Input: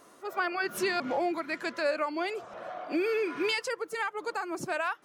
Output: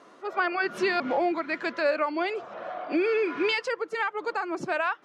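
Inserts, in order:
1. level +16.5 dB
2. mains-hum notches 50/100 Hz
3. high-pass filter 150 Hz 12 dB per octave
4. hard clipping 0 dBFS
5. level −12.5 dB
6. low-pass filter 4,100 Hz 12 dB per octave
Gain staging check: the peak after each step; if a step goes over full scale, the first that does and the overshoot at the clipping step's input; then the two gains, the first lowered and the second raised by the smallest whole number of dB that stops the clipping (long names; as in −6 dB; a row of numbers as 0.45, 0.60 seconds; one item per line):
−1.5, −1.5, −1.5, −1.5, −14.0, −14.0 dBFS
no step passes full scale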